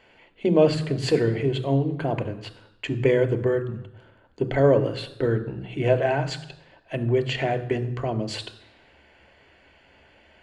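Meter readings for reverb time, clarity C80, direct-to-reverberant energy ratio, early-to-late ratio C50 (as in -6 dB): 0.85 s, 16.5 dB, 8.5 dB, 14.5 dB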